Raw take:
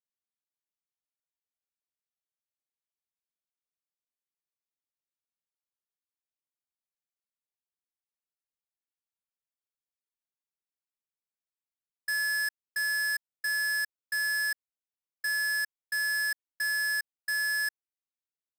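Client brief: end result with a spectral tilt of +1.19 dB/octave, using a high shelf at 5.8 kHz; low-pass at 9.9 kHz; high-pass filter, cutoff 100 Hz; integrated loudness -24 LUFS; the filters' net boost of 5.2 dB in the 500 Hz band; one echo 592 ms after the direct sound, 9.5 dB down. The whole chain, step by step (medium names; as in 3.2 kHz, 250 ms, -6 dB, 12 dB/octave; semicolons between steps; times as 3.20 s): high-pass 100 Hz; low-pass 9.9 kHz; peaking EQ 500 Hz +7 dB; treble shelf 5.8 kHz -3 dB; delay 592 ms -9.5 dB; trim +6 dB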